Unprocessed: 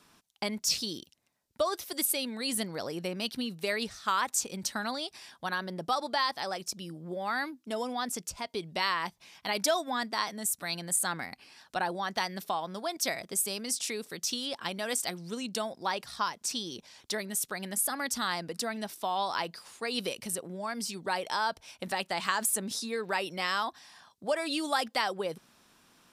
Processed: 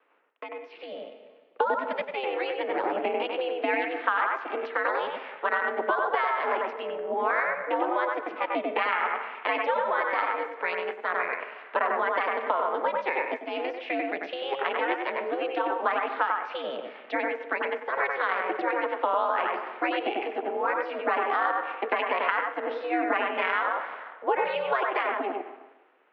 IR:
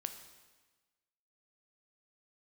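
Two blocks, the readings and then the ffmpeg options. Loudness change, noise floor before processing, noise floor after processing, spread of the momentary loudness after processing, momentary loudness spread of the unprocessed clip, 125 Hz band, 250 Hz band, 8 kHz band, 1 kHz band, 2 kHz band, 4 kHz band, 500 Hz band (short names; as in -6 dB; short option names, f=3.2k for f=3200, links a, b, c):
+4.0 dB, -68 dBFS, -51 dBFS, 7 LU, 8 LU, under -15 dB, +0.5 dB, under -40 dB, +7.0 dB, +7.0 dB, -7.0 dB, +7.5 dB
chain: -filter_complex "[0:a]asplit=2[a][b];[1:a]atrim=start_sample=2205,lowpass=2.7k,adelay=94[c];[b][c]afir=irnorm=-1:irlink=0,volume=-0.5dB[d];[a][d]amix=inputs=2:normalize=0,aeval=exprs='val(0)*sin(2*PI*200*n/s)':c=same,acompressor=threshold=-34dB:ratio=6,highpass=f=220:t=q:w=0.5412,highpass=f=220:t=q:w=1.307,lowpass=f=2.6k:t=q:w=0.5176,lowpass=f=2.6k:t=q:w=0.7071,lowpass=f=2.6k:t=q:w=1.932,afreqshift=63,dynaudnorm=f=160:g=13:m=13dB"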